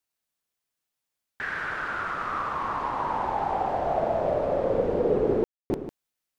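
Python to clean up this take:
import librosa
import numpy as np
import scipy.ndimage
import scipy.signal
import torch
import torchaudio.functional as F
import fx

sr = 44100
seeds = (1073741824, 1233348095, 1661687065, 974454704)

y = fx.fix_ambience(x, sr, seeds[0], print_start_s=0.0, print_end_s=0.5, start_s=5.44, end_s=5.7)
y = fx.fix_echo_inverse(y, sr, delay_ms=151, level_db=-11.0)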